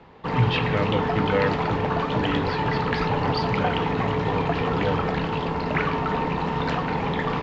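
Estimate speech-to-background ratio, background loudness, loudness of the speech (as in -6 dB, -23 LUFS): -4.0 dB, -25.0 LUFS, -29.0 LUFS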